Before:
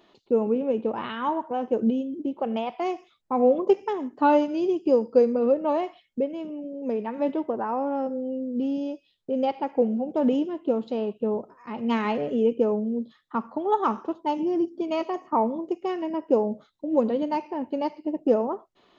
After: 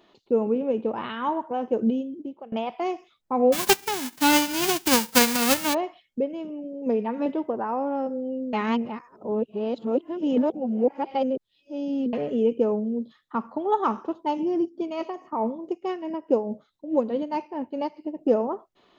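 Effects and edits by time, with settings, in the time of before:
1.95–2.52 fade out, to -22 dB
3.52–5.73 spectral whitening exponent 0.1
6.86–7.26 comb 4.2 ms
8.53–12.13 reverse
14.62–18.21 tremolo 4.7 Hz, depth 53%

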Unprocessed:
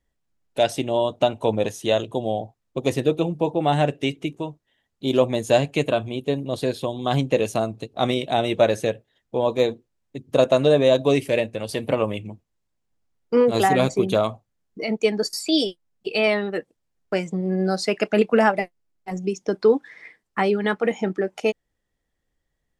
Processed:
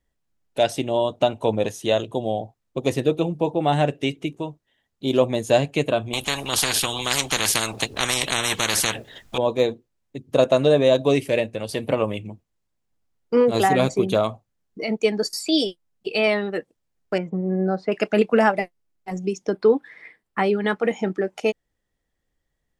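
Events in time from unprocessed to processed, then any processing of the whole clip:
6.13–9.38 spectral compressor 10:1
17.18–17.92 LPF 1400 Hz
19.49–20.65 bell 6300 Hz -11 dB -> -5 dB

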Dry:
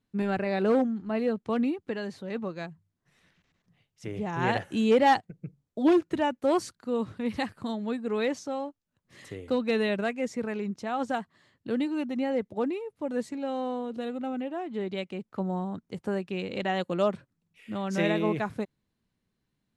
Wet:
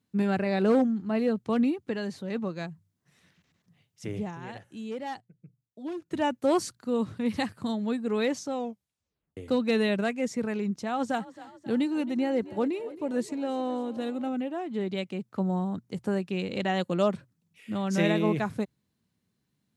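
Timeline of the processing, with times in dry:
4.14–6.26 dip -15.5 dB, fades 0.26 s
8.53 tape stop 0.84 s
10.84–14.29 frequency-shifting echo 0.269 s, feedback 62%, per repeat +33 Hz, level -17.5 dB
whole clip: HPF 87 Hz; tone controls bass +5 dB, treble +5 dB; notches 60/120 Hz

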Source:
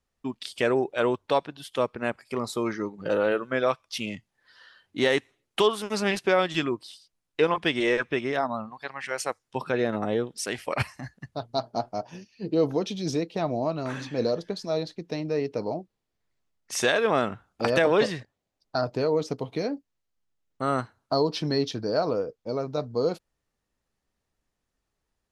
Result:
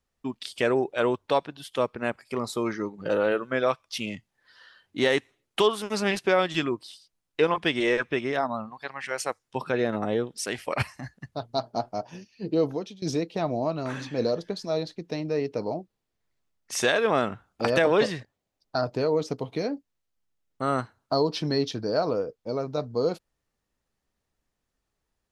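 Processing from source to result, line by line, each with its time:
12.56–13.02 fade out, to -21 dB

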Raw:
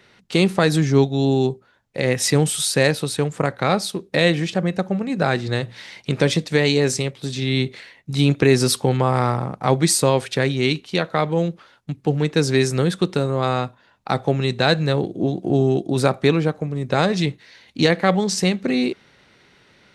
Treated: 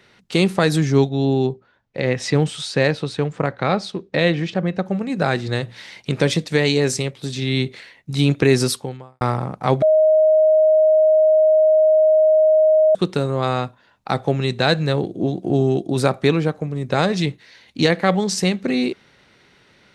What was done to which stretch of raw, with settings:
1.09–4.86 air absorption 120 m
8.62–9.21 fade out quadratic
9.82–12.95 bleep 625 Hz -10.5 dBFS

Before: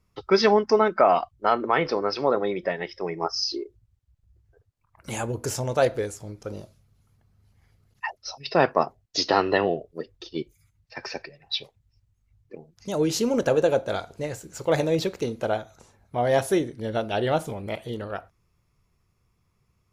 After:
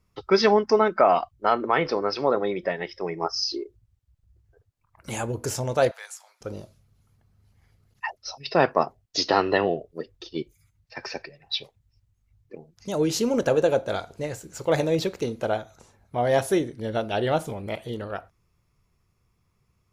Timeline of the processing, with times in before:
5.91–6.41 steep high-pass 800 Hz

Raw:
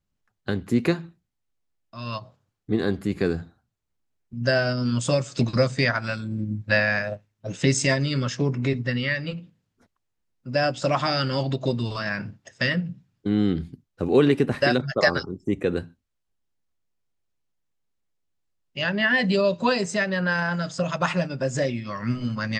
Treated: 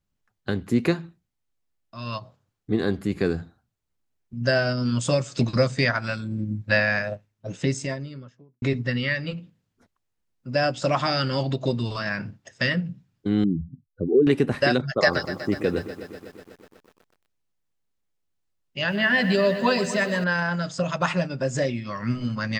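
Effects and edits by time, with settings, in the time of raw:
7.1–8.62 studio fade out
13.44–14.27 spectral contrast raised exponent 2.4
14.99–20.24 lo-fi delay 0.123 s, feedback 80%, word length 8-bit, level -13 dB

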